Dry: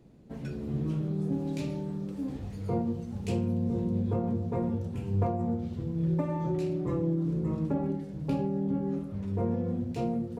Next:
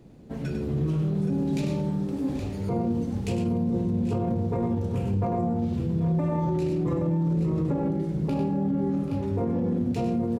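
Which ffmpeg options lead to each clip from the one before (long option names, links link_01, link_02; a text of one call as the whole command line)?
ffmpeg -i in.wav -filter_complex "[0:a]asplit=2[link_01][link_02];[link_02]aecho=0:1:98|785|821:0.473|0.15|0.316[link_03];[link_01][link_03]amix=inputs=2:normalize=0,alimiter=level_in=1dB:limit=-24dB:level=0:latency=1:release=23,volume=-1dB,volume=6dB" out.wav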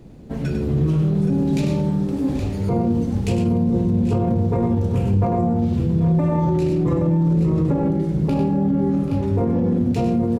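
ffmpeg -i in.wav -af "lowshelf=frequency=69:gain=7.5,volume=6dB" out.wav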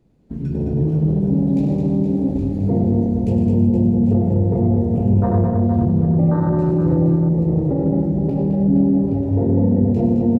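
ffmpeg -i in.wav -filter_complex "[0:a]afwtdn=0.112,asplit=2[link_01][link_02];[link_02]aecho=0:1:153|214|376|470|647|795:0.299|0.562|0.188|0.398|0.119|0.178[link_03];[link_01][link_03]amix=inputs=2:normalize=0" out.wav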